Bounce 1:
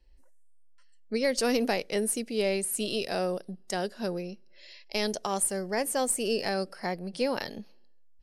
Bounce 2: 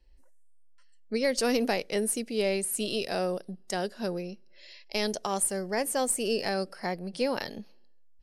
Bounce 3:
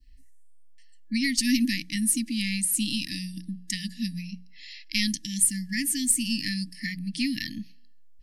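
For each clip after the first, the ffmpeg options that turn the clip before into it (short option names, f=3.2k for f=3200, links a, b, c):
-af anull
-af "adynamicequalizer=threshold=0.00501:dfrequency=2300:dqfactor=1:tfrequency=2300:tqfactor=1:attack=5:release=100:ratio=0.375:range=2.5:mode=cutabove:tftype=bell,afftfilt=real='re*(1-between(b*sr/4096,320,1700))':imag='im*(1-between(b*sr/4096,320,1700))':win_size=4096:overlap=0.75,bandreject=f=60:t=h:w=6,bandreject=f=120:t=h:w=6,bandreject=f=180:t=h:w=6,volume=6.5dB"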